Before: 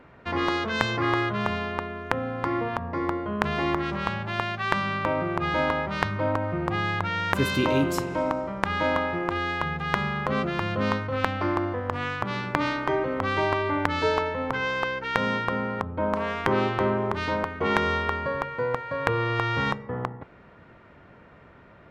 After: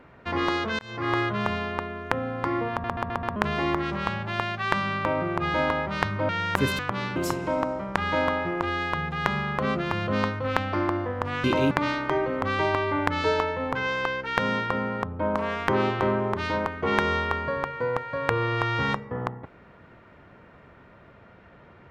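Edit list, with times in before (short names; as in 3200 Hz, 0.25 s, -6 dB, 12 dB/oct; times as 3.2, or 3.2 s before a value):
0.79–1.17 fade in
2.71 stutter in place 0.13 s, 5 plays
6.29–7.07 cut
7.57–7.84 swap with 12.12–12.49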